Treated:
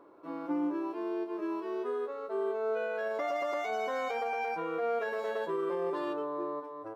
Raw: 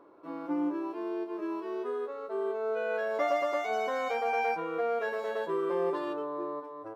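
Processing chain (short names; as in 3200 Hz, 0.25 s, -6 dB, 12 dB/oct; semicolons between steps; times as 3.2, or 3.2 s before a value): limiter -25 dBFS, peak gain reduction 6.5 dB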